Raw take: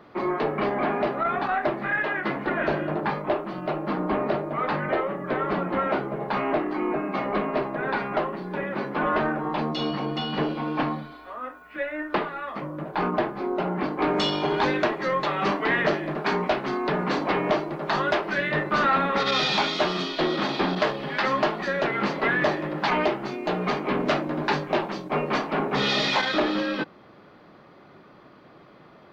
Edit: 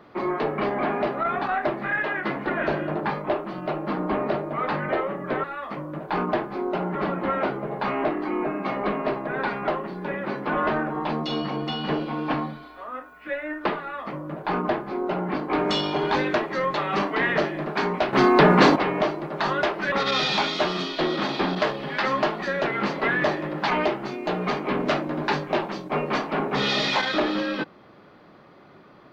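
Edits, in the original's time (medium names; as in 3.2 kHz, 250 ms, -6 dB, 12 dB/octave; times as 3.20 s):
12.29–13.80 s: copy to 5.44 s
16.62–17.25 s: gain +10.5 dB
18.41–19.12 s: delete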